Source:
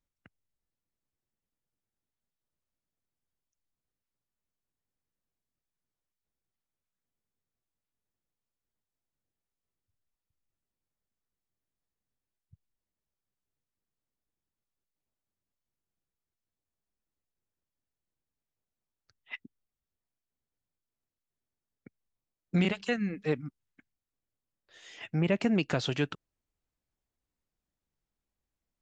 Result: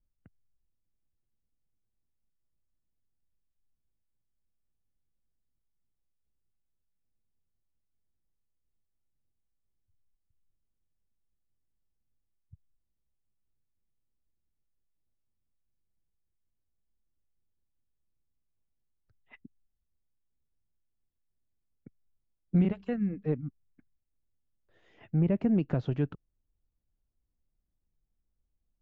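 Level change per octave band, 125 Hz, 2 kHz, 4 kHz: +3.0 dB, -14.0 dB, under -15 dB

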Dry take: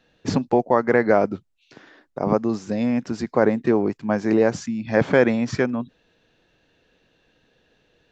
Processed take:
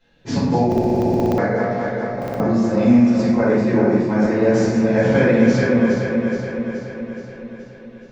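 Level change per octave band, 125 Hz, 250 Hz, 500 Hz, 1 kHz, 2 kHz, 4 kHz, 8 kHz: +8.5 dB, +7.0 dB, +3.0 dB, +1.5 dB, +2.5 dB, +3.5 dB, n/a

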